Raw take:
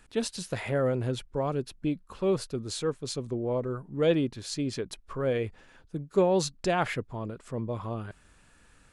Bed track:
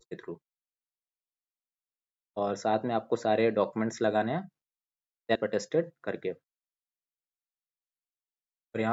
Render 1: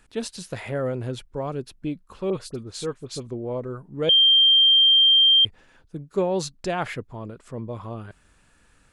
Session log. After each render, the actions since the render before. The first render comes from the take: 2.3–3.27 dispersion highs, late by 44 ms, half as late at 2000 Hz; 4.09–5.45 bleep 3170 Hz -12.5 dBFS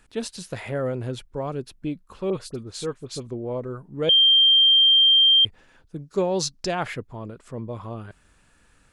5.98–6.75 bell 5400 Hz +9.5 dB 0.74 oct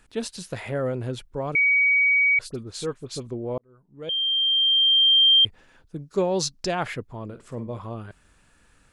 1.55–2.39 bleep 2260 Hz -16 dBFS; 3.58–5.34 fade in; 7.25–7.79 flutter echo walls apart 8.4 m, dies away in 0.25 s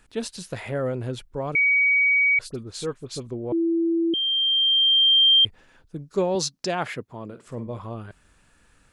3.52–4.14 bleep 333 Hz -19 dBFS; 6.35–7.47 HPF 130 Hz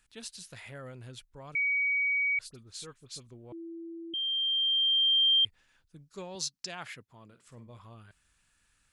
passive tone stack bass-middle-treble 5-5-5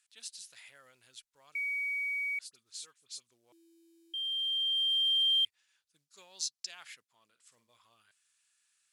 short-mantissa float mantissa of 4-bit; band-pass 7100 Hz, Q 0.55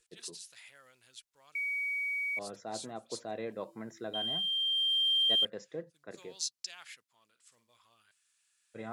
add bed track -13.5 dB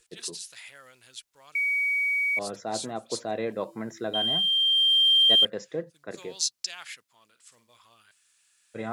gain +8.5 dB

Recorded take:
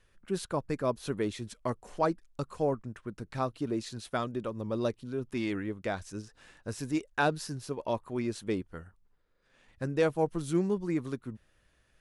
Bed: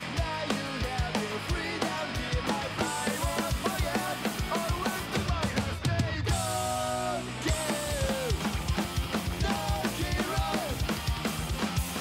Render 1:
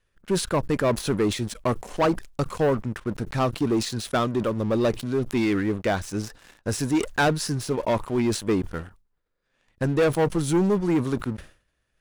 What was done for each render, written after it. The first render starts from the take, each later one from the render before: sample leveller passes 3; sustainer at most 140 dB/s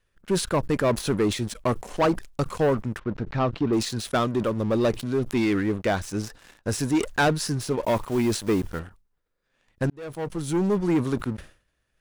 2.99–3.73 air absorption 200 m; 7.84–8.8 block floating point 5-bit; 9.9–10.84 fade in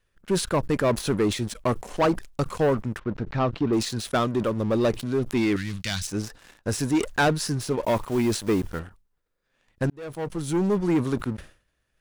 5.56–6.07 EQ curve 170 Hz 0 dB, 410 Hz -22 dB, 1100 Hz -9 dB, 4400 Hz +12 dB, 15000 Hz +6 dB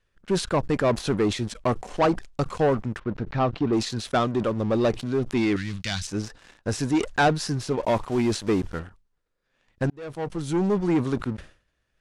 LPF 7500 Hz 12 dB/oct; dynamic EQ 750 Hz, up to +5 dB, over -45 dBFS, Q 7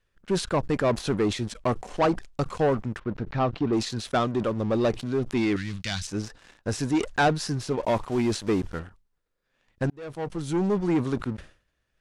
gain -1.5 dB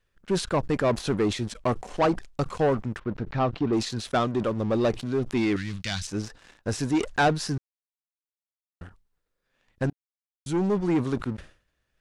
7.58–8.81 mute; 9.93–10.46 mute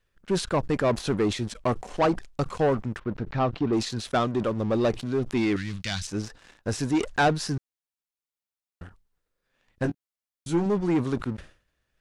9.82–10.66 doubler 18 ms -6.5 dB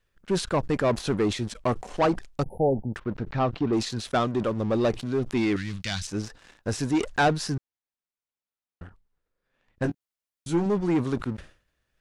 2.43–2.94 brick-wall FIR band-stop 920–9700 Hz; 7.54–9.82 high shelf 4000 Hz -10 dB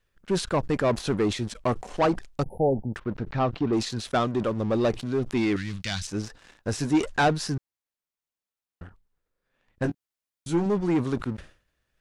6.79–7.24 doubler 13 ms -9 dB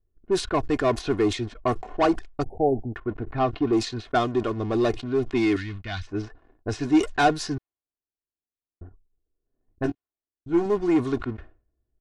low-pass opened by the level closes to 380 Hz, open at -20.5 dBFS; comb 2.8 ms, depth 63%

